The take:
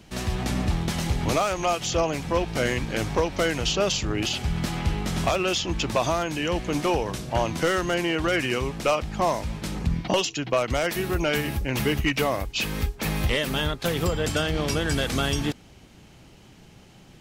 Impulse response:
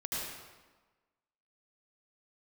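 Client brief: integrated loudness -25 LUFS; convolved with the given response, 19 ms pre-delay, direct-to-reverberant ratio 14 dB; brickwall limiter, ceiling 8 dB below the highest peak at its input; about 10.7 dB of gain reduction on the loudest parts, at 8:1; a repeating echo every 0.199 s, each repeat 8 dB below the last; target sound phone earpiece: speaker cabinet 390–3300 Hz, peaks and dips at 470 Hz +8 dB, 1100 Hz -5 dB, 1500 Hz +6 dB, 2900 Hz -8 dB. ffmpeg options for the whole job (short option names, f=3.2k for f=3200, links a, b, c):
-filter_complex "[0:a]acompressor=threshold=-30dB:ratio=8,alimiter=level_in=2dB:limit=-24dB:level=0:latency=1,volume=-2dB,aecho=1:1:199|398|597|796|995:0.398|0.159|0.0637|0.0255|0.0102,asplit=2[a][b];[1:a]atrim=start_sample=2205,adelay=19[c];[b][c]afir=irnorm=-1:irlink=0,volume=-18dB[d];[a][d]amix=inputs=2:normalize=0,highpass=390,equalizer=f=470:t=q:w=4:g=8,equalizer=f=1.1k:t=q:w=4:g=-5,equalizer=f=1.5k:t=q:w=4:g=6,equalizer=f=2.9k:t=q:w=4:g=-8,lowpass=f=3.3k:w=0.5412,lowpass=f=3.3k:w=1.3066,volume=11.5dB"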